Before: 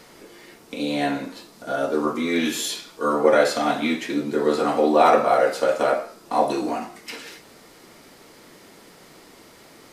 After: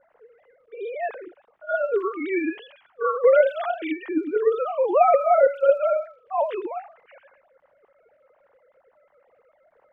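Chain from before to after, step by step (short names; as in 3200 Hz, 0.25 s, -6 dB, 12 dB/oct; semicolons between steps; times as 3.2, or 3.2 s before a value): sine-wave speech; crackle 190/s -51 dBFS; low-pass opened by the level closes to 1100 Hz, open at -15 dBFS; gain -1 dB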